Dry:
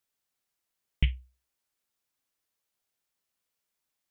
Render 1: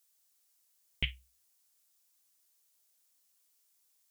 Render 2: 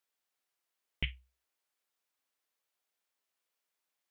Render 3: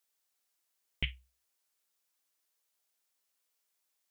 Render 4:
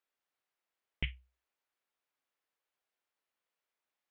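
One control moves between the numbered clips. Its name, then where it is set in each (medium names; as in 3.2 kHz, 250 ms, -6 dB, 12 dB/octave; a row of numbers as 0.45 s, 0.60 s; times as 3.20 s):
tone controls, treble: +13 dB, -4 dB, +4 dB, -14 dB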